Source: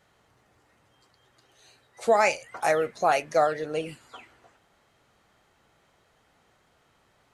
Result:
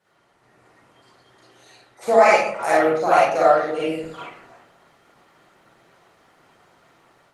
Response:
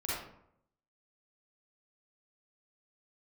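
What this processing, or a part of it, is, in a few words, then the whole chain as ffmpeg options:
far-field microphone of a smart speaker: -filter_complex "[0:a]asplit=3[a][b][c];[a]afade=t=out:st=3.33:d=0.02[d];[b]bandreject=f=1.1k:w=19,afade=t=in:st=3.33:d=0.02,afade=t=out:st=4.04:d=0.02[e];[c]afade=t=in:st=4.04:d=0.02[f];[d][e][f]amix=inputs=3:normalize=0[g];[1:a]atrim=start_sample=2205[h];[g][h]afir=irnorm=-1:irlink=0,highpass=f=130:w=0.5412,highpass=f=130:w=1.3066,dynaudnorm=f=330:g=3:m=6.5dB" -ar 48000 -c:a libopus -b:a 20k

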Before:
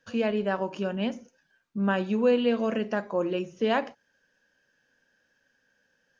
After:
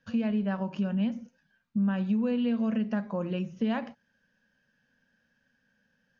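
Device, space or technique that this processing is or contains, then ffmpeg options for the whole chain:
jukebox: -af "lowpass=5.1k,lowshelf=f=270:t=q:w=3:g=6,acompressor=threshold=-24dB:ratio=3,volume=-2.5dB"

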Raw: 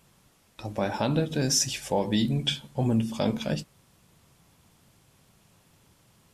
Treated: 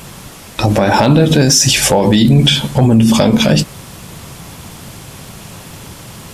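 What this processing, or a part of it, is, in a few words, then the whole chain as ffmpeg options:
loud club master: -af "acompressor=threshold=-29dB:ratio=2.5,asoftclip=type=hard:threshold=-21dB,alimiter=level_in=29.5dB:limit=-1dB:release=50:level=0:latency=1,volume=-1dB"

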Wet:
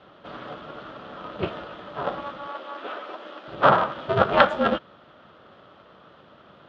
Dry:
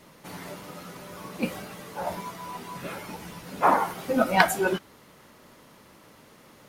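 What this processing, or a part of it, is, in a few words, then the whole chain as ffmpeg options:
ring modulator pedal into a guitar cabinet: -filter_complex "[0:a]aeval=exprs='val(0)*sgn(sin(2*PI*140*n/s))':c=same,highpass=89,equalizer=f=140:t=q:w=4:g=4,equalizer=f=200:t=q:w=4:g=7,equalizer=f=580:t=q:w=4:g=9,equalizer=f=1.3k:t=q:w=4:g=10,equalizer=f=2.2k:t=q:w=4:g=-7,equalizer=f=3.3k:t=q:w=4:g=7,lowpass=f=3.5k:w=0.5412,lowpass=f=3.5k:w=1.3066,asettb=1/sr,asplit=3[a][b][c];[a]atrim=end=2.474[d];[b]atrim=start=2.47:end=3.48,asetpts=PTS-STARTPTS,afade=t=in:d=0.004:c=qsin,afade=t=out:st=1.006:d=0.004:c=qsin,highpass=f=290:w=0.5412,highpass=f=290:w=1.3066[e];[c]atrim=start=3.476[f];[d][e]acrossfade=d=0.004:c1=hsin:c2=qsin[g];[g][f]acrossfade=d=0.004:c1=qsin:c2=hsin,volume=-1dB"

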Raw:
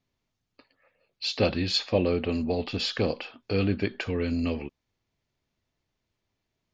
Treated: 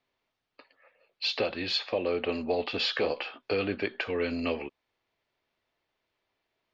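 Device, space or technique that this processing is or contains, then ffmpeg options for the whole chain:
DJ mixer with the lows and highs turned down: -filter_complex "[0:a]asettb=1/sr,asplit=3[a][b][c];[a]atrim=end=2.964[d];[b]atrim=start=2.96:end=3.39,asetpts=PTS-STARTPTS,afade=t=in:d=0.004:c=qsin,afade=t=out:st=0.426:d=0.004:c=qsin,asplit=2[e][f];[f]adelay=14,volume=-4.5dB[g];[e][g]amix=inputs=2:normalize=0,atrim=end_sample=18963[h];[c]atrim=start=3.386[i];[d][h]acrossfade=d=0.004:c1=hsin:c2=qsin[j];[j][i]acrossfade=d=0.004:c1=qsin:c2=hsin,acrossover=split=360 4500:gain=0.158 1 0.1[k][l][m];[k][l][m]amix=inputs=3:normalize=0,alimiter=limit=-22.5dB:level=0:latency=1:release=339,volume=5dB"

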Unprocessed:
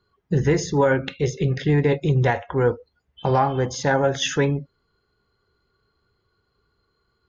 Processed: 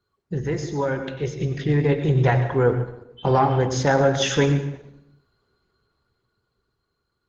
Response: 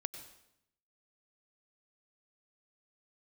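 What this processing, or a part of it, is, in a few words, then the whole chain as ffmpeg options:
speakerphone in a meeting room: -filter_complex "[1:a]atrim=start_sample=2205[a];[0:a][a]afir=irnorm=-1:irlink=0,dynaudnorm=f=200:g=17:m=13.5dB,volume=-5dB" -ar 48000 -c:a libopus -b:a 16k

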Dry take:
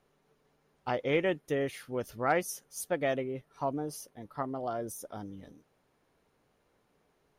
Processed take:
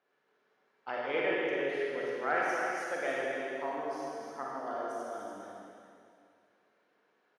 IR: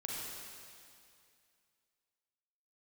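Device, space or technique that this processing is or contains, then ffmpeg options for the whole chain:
station announcement: -filter_complex "[0:a]highpass=360,lowpass=4.6k,equalizer=f=1.6k:t=o:w=0.5:g=6.5,aecho=1:1:55.39|285.7:0.316|0.447[a];[1:a]atrim=start_sample=2205[b];[a][b]afir=irnorm=-1:irlink=0,volume=-2.5dB"

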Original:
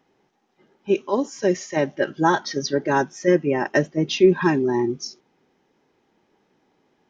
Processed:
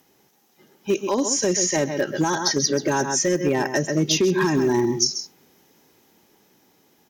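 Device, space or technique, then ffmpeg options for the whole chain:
FM broadcast chain: -filter_complex "[0:a]highpass=48,lowshelf=f=170:g=5,aecho=1:1:130:0.237,dynaudnorm=f=220:g=13:m=11.5dB,acrossover=split=2000|5100[a][b][c];[a]acompressor=threshold=-14dB:ratio=4[d];[b]acompressor=threshold=-42dB:ratio=4[e];[c]acompressor=threshold=-37dB:ratio=4[f];[d][e][f]amix=inputs=3:normalize=0,aemphasis=mode=production:type=50fm,alimiter=limit=-13.5dB:level=0:latency=1:release=147,asoftclip=type=hard:threshold=-15.5dB,lowpass=f=15k:w=0.5412,lowpass=f=15k:w=1.3066,aemphasis=mode=production:type=50fm,volume=2.5dB"

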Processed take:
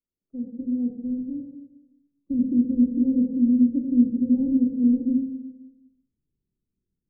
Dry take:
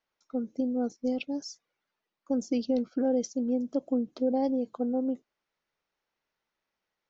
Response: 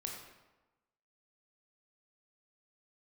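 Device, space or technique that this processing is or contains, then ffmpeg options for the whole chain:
next room: -filter_complex "[0:a]asubboost=boost=9.5:cutoff=230,lowpass=f=380:w=0.5412,lowpass=f=380:w=1.3066[a];[1:a]atrim=start_sample=2205[b];[a][b]afir=irnorm=-1:irlink=0"

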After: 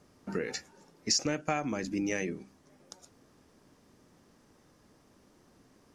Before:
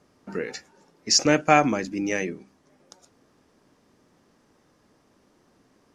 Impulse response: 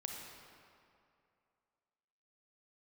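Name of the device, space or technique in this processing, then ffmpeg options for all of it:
ASMR close-microphone chain: -af "lowshelf=f=160:g=6,acompressor=threshold=-26dB:ratio=6,highshelf=f=6.4k:g=6,volume=-2dB"

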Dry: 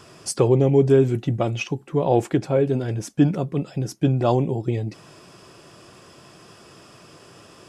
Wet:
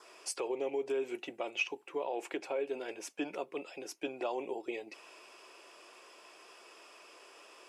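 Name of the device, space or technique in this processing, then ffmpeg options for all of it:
laptop speaker: -af "highpass=f=380:w=0.5412,highpass=f=380:w=1.3066,equalizer=f=940:t=o:w=0.3:g=4.5,equalizer=f=2.3k:t=o:w=0.4:g=6,alimiter=limit=-18dB:level=0:latency=1:release=148,adynamicequalizer=threshold=0.00141:dfrequency=2700:dqfactor=4.2:tfrequency=2700:tqfactor=4.2:attack=5:release=100:ratio=0.375:range=3.5:mode=boostabove:tftype=bell,volume=-8.5dB"

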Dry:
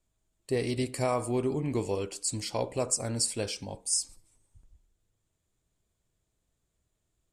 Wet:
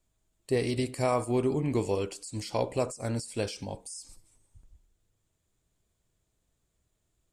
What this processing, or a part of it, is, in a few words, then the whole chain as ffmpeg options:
de-esser from a sidechain: -filter_complex "[0:a]asplit=2[a][b];[b]highpass=6.2k,apad=whole_len=323199[c];[a][c]sidechaincompress=threshold=-43dB:ratio=6:attack=2.7:release=73,volume=2dB"

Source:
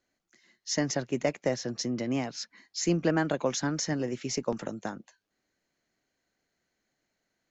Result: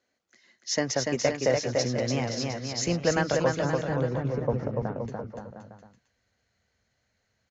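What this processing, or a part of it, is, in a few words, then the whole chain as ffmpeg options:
car door speaker: -filter_complex "[0:a]asettb=1/sr,asplit=3[a][b][c];[a]atrim=end=3.494[d];[b]atrim=start=3.49:end=4.96,asetpts=PTS-STARTPTS,afade=t=in:d=0.004:c=qsin,afade=t=out:st=1.466:d=0.004:c=qsin,lowpass=1.1k[e];[c]atrim=start=4.956[f];[d][e]acrossfade=d=0.004:c1=hsin:c2=qsin[g];[g][f]acrossfade=d=0.004:c1=qsin:c2=hsin,asubboost=boost=11.5:cutoff=90,highpass=83,equalizer=f=160:t=q:w=4:g=-7,equalizer=f=330:t=q:w=4:g=-5,equalizer=f=490:t=q:w=4:g=5,lowpass=f=7.1k:w=0.5412,lowpass=f=7.1k:w=1.3066,aecho=1:1:290|522|707.6|856.1|974.9:0.631|0.398|0.251|0.158|0.1,volume=3dB"

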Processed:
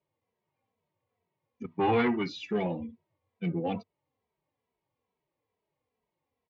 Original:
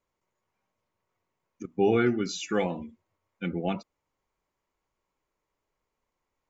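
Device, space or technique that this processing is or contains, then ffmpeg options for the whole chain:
barber-pole flanger into a guitar amplifier: -filter_complex "[0:a]asplit=2[a][b];[b]adelay=2.7,afreqshift=-2.3[c];[a][c]amix=inputs=2:normalize=1,asoftclip=type=tanh:threshold=-24dB,highpass=77,equalizer=f=99:t=q:w=4:g=9,equalizer=f=150:t=q:w=4:g=7,equalizer=f=250:t=q:w=4:g=4,equalizer=f=470:t=q:w=4:g=6,equalizer=f=770:t=q:w=4:g=4,equalizer=f=1.4k:t=q:w=4:g=-9,lowpass=f=4.2k:w=0.5412,lowpass=f=4.2k:w=1.3066,asettb=1/sr,asplit=3[d][e][f];[d]atrim=end=1.644[g];[e]atrim=start=1.64:end=2.29,asetpts=PTS-STARTPTS,afade=t=in:d=0.004:c=qsin,afade=t=out:st=0.646:d=0.004:c=qsin,equalizer=f=500:t=o:w=1:g=-4,equalizer=f=1k:t=o:w=1:g=11,equalizer=f=2k:t=o:w=1:g=8,equalizer=f=4k:t=o:w=1:g=5[h];[f]atrim=start=2.286[i];[g][h]acrossfade=d=0.004:c1=hsin:c2=qsin[j];[j][i]acrossfade=d=0.004:c1=qsin:c2=hsin"

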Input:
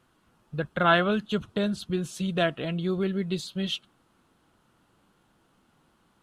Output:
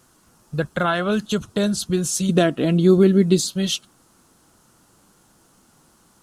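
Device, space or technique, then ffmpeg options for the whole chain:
over-bright horn tweeter: -filter_complex "[0:a]highshelf=f=4.4k:t=q:w=1.5:g=10,alimiter=limit=-18.5dB:level=0:latency=1:release=310,asettb=1/sr,asplit=3[a][b][c];[a]atrim=end=2.294[d];[b]atrim=start=2.29:end=3.51,asetpts=PTS-STARTPTS,afade=t=in:d=0.004:c=qsin,afade=t=out:st=1.216:d=0.004:c=qsin,equalizer=f=280:t=o:w=1.2:g=11[e];[c]atrim=start=3.506[f];[d][e]acrossfade=d=0.004:c1=hsin:c2=qsin[g];[g][f]acrossfade=d=0.004:c1=qsin:c2=hsin,volume=7.5dB"

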